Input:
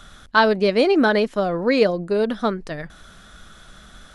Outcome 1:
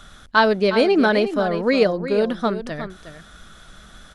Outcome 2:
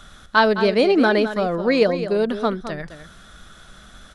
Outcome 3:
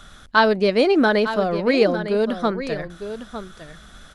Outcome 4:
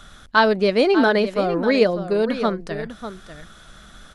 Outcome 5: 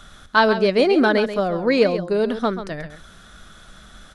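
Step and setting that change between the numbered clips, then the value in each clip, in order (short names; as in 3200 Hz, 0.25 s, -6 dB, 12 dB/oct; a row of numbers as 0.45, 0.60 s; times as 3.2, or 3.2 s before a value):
echo, time: 0.361, 0.212, 0.905, 0.595, 0.135 s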